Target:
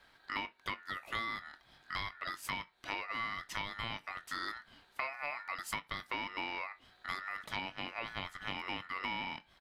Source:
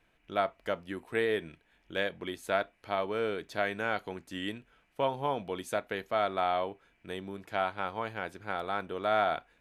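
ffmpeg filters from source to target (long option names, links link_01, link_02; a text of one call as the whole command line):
ffmpeg -i in.wav -filter_complex "[0:a]acompressor=threshold=-41dB:ratio=10,aeval=exprs='val(0)*sin(2*PI*1600*n/s)':channel_layout=same,asplit=2[link_01][link_02];[link_02]adelay=21,volume=-13dB[link_03];[link_01][link_03]amix=inputs=2:normalize=0,volume=8dB" out.wav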